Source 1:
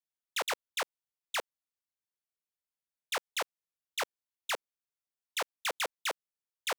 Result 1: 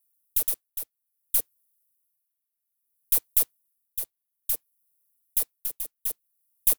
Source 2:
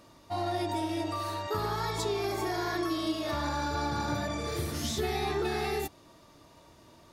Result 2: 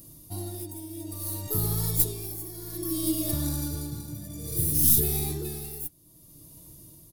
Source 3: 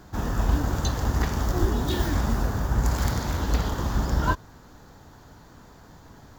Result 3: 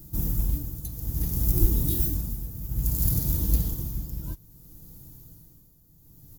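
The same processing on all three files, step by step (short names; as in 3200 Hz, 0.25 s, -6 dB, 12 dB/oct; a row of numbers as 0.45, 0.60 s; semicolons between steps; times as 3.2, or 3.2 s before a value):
tracing distortion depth 0.071 ms; comb 6.3 ms, depth 41%; tremolo 0.6 Hz, depth 76%; EQ curve 110 Hz 0 dB, 310 Hz -8 dB, 840 Hz -23 dB, 1600 Hz -26 dB, 7200 Hz -3 dB, 11000 Hz +15 dB; modulation noise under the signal 31 dB; match loudness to -27 LUFS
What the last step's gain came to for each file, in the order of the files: +9.5, +10.5, +4.0 dB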